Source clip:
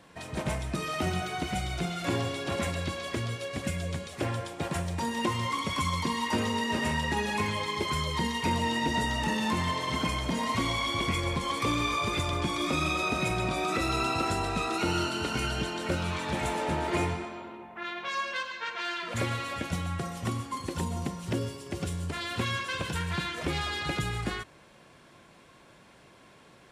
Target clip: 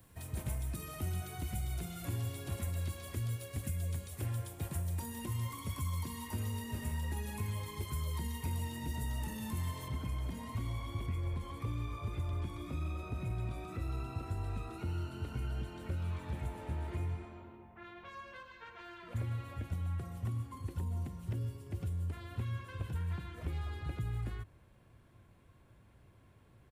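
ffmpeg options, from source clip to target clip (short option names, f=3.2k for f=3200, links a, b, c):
-filter_complex "[0:a]firequalizer=gain_entry='entry(110,0);entry(150,-13);entry(550,-19);entry(5400,-22);entry(14000,-1)':delay=0.05:min_phase=1,acrossover=split=200|1400[a][b][c];[a]acompressor=threshold=-42dB:ratio=4[d];[b]acompressor=threshold=-52dB:ratio=4[e];[c]acompressor=threshold=-59dB:ratio=4[f];[d][e][f]amix=inputs=3:normalize=0,asetnsamples=n=441:p=0,asendcmd='9.88 highshelf g -2;11.06 highshelf g -8.5',highshelf=f=5.1k:g=10,volume=6dB"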